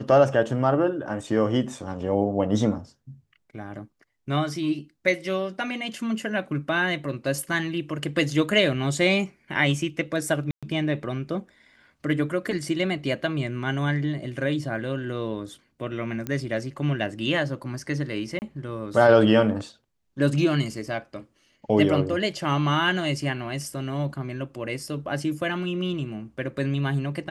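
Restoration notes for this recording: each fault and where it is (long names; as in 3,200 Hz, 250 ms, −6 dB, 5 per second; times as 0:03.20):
0:10.51–0:10.63: drop-out 116 ms
0:16.27: click −16 dBFS
0:18.39–0:18.42: drop-out 29 ms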